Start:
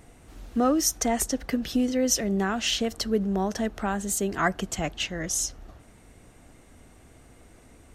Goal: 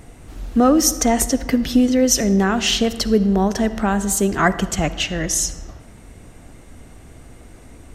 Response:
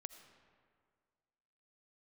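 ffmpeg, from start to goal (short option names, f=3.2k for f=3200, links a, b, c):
-filter_complex "[0:a]asplit=2[a][b];[b]lowshelf=f=270:g=6.5[c];[1:a]atrim=start_sample=2205,asetrate=66150,aresample=44100[d];[c][d]afir=irnorm=-1:irlink=0,volume=11.5dB[e];[a][e]amix=inputs=2:normalize=0"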